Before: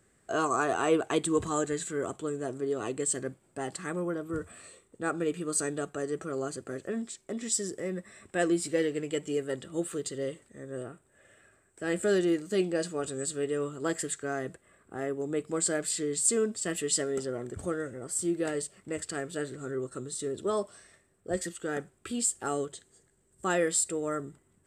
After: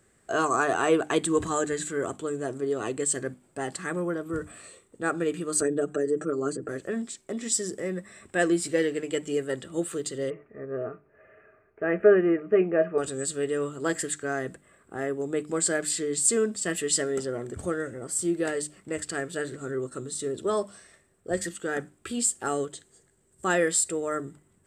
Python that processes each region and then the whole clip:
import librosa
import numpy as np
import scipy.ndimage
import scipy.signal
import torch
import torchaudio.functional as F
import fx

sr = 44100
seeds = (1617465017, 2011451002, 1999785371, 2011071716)

y = fx.chain(x, sr, fx.envelope_sharpen(power=1.5),
    fx.comb(ms=6.6, depth=0.85),
    fx.band_squash(depth_pct=70), at=(5.61, 6.69))
y = fx.chain(y, sr, fx.ellip_lowpass(hz=2500.0, order=4, stop_db=40),
    fx.small_body(hz=(430.0, 640.0, 1200.0), ring_ms=100, db=13), at=(10.3, 12.98))
y = fx.hum_notches(y, sr, base_hz=50, count=6)
y = fx.dynamic_eq(y, sr, hz=1700.0, q=4.3, threshold_db=-51.0, ratio=4.0, max_db=4)
y = F.gain(torch.from_numpy(y), 3.0).numpy()